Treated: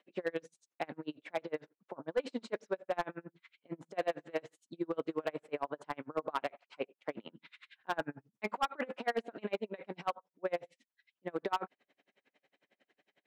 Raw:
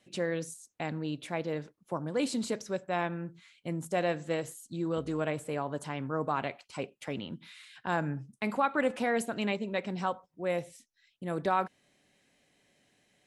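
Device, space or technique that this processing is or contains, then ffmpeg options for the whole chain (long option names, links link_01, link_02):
helicopter radio: -af "highpass=350,lowpass=2600,aeval=exprs='val(0)*pow(10,-35*(0.5-0.5*cos(2*PI*11*n/s))/20)':channel_layout=same,asoftclip=type=hard:threshold=-29.5dB,volume=5dB"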